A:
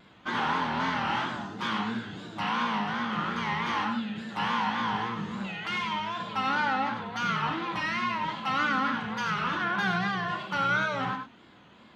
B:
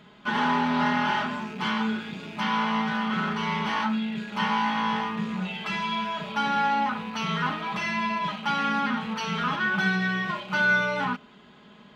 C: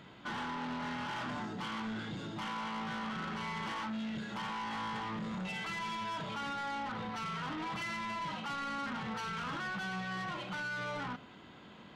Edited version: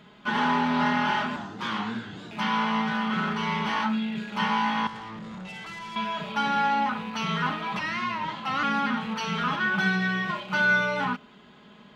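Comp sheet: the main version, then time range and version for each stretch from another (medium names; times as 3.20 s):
B
1.36–2.31 s: from A
4.87–5.96 s: from C
7.79–8.63 s: from A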